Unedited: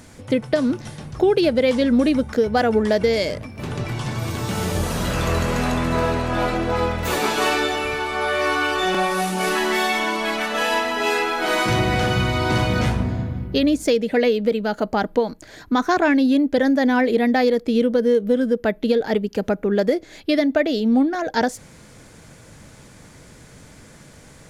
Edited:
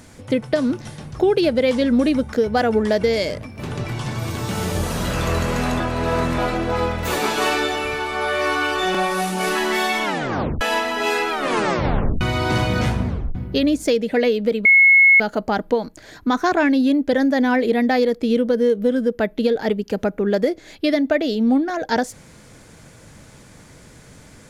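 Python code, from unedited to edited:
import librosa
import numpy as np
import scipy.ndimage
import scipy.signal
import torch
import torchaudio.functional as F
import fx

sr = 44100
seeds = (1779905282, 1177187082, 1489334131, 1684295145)

y = fx.edit(x, sr, fx.reverse_span(start_s=5.8, length_s=0.58),
    fx.tape_stop(start_s=10.04, length_s=0.57),
    fx.tape_stop(start_s=11.3, length_s=0.91),
    fx.tape_stop(start_s=13.07, length_s=0.28),
    fx.insert_tone(at_s=14.65, length_s=0.55, hz=2180.0, db=-8.0), tone=tone)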